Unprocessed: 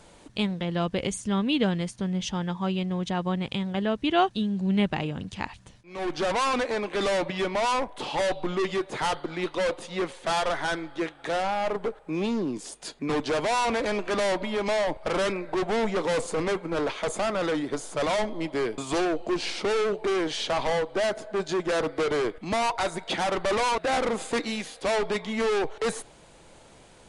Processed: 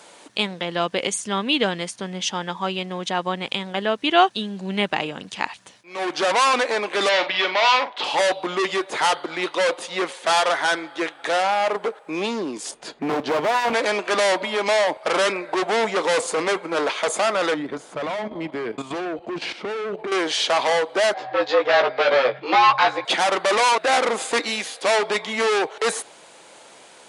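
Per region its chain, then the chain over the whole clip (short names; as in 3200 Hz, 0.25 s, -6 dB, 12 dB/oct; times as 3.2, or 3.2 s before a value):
7.09–8.04 LPF 4300 Hz 24 dB/oct + tilt +3 dB/oct + doubler 44 ms -10 dB
12.71–13.73 RIAA curve playback + overloaded stage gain 22 dB
17.54–20.12 level quantiser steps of 11 dB + tone controls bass +14 dB, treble -13 dB
21.14–23.05 LPF 4200 Hz 24 dB/oct + doubler 16 ms -2 dB + frequency shift +130 Hz
whole clip: Bessel high-pass 270 Hz, order 2; low shelf 350 Hz -10 dB; gain +9 dB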